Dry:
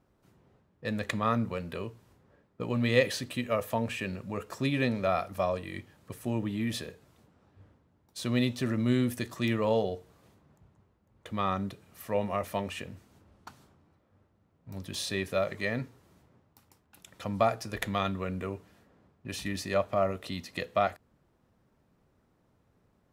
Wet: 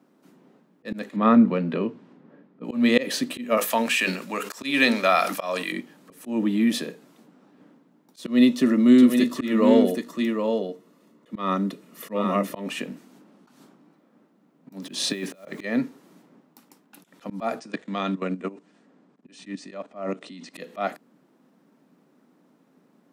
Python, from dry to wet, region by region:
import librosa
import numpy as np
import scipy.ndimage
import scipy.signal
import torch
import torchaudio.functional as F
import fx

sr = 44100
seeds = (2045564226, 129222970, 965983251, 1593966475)

y = fx.chain(x, sr, fx.lowpass(hz=3300.0, slope=12),
    fx.low_shelf(hz=270.0, db=7.5), at=(1.16, 2.64))
y = fx.chain(y, sr, fx.tilt_shelf(db=-9.0, hz=720.0),
    fx.hum_notches(base_hz=50, count=8),
    fx.sustainer(db_per_s=96.0), at=(3.57, 5.72))
y = fx.chain(y, sr, fx.notch_comb(f0_hz=790.0),
    fx.echo_single(ms=771, db=-5.5), at=(8.21, 12.66))
y = fx.chain(y, sr, fx.lowpass(hz=9700.0, slope=12),
    fx.over_compress(threshold_db=-35.0, ratio=-0.5),
    fx.quant_dither(seeds[0], bits=10, dither='none'), at=(14.82, 15.64))
y = fx.chain(y, sr, fx.level_steps(step_db=17),
    fx.brickwall_lowpass(high_hz=9400.0), at=(17.59, 20.54))
y = scipy.signal.sosfilt(scipy.signal.butter(8, 160.0, 'highpass', fs=sr, output='sos'), y)
y = fx.peak_eq(y, sr, hz=270.0, db=8.5, octaves=0.57)
y = fx.auto_swell(y, sr, attack_ms=164.0)
y = y * librosa.db_to_amplitude(7.0)